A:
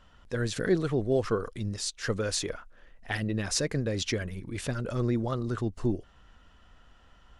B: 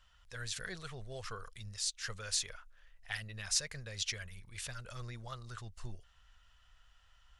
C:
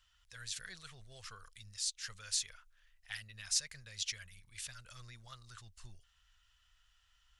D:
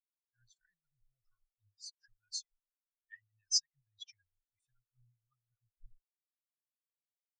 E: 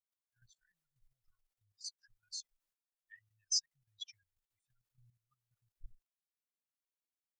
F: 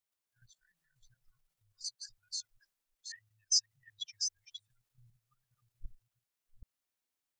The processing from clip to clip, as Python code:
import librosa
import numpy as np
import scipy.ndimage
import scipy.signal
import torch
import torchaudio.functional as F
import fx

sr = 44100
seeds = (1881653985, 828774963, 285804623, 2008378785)

y1 = fx.tone_stack(x, sr, knobs='10-0-10')
y1 = F.gain(torch.from_numpy(y1), -1.5).numpy()
y2 = fx.tone_stack(y1, sr, knobs='5-5-5')
y2 = F.gain(torch.from_numpy(y2), 5.5).numpy()
y3 = fx.spectral_expand(y2, sr, expansion=4.0)
y4 = fx.level_steps(y3, sr, step_db=12)
y4 = F.gain(torch.from_numpy(y4), 6.0).numpy()
y5 = fx.reverse_delay(y4, sr, ms=390, wet_db=-6.5)
y5 = F.gain(torch.from_numpy(y5), 4.5).numpy()